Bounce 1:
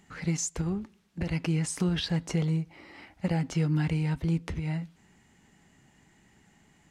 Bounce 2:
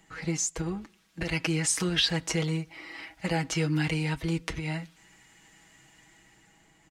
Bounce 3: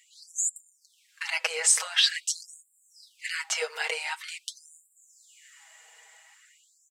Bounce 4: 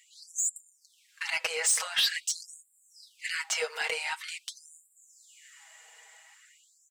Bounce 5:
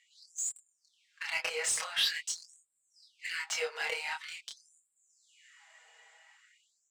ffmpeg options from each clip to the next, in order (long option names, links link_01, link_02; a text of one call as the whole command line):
ffmpeg -i in.wav -filter_complex "[0:a]equalizer=frequency=170:width=2.1:gain=-8.5,aecho=1:1:6.2:0.74,acrossover=split=340|1300[link_01][link_02][link_03];[link_03]dynaudnorm=framelen=130:gausssize=13:maxgain=7dB[link_04];[link_01][link_02][link_04]amix=inputs=3:normalize=0" out.wav
ffmpeg -i in.wav -af "equalizer=frequency=7900:width_type=o:width=0.2:gain=6.5,afftfilt=real='re*gte(b*sr/1024,390*pow(7100/390,0.5+0.5*sin(2*PI*0.46*pts/sr)))':imag='im*gte(b*sr/1024,390*pow(7100/390,0.5+0.5*sin(2*PI*0.46*pts/sr)))':win_size=1024:overlap=0.75,volume=3.5dB" out.wav
ffmpeg -i in.wav -af "asoftclip=type=tanh:threshold=-19.5dB" out.wav
ffmpeg -i in.wav -af "adynamicsmooth=sensitivity=7.5:basefreq=5500,flanger=delay=22.5:depth=5.2:speed=0.34" out.wav